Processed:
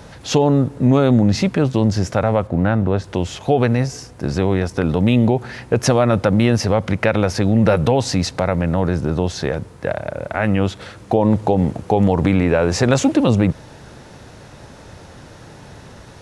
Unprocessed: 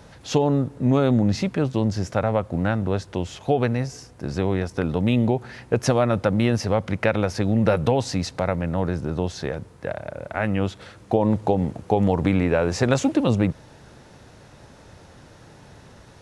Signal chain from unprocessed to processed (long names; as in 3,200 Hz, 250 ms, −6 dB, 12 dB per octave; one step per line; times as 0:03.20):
in parallel at +2.5 dB: brickwall limiter −15.5 dBFS, peak gain reduction 10.5 dB
0:02.47–0:03.04: on the sum: high-shelf EQ 3,400 Hz −10.5 dB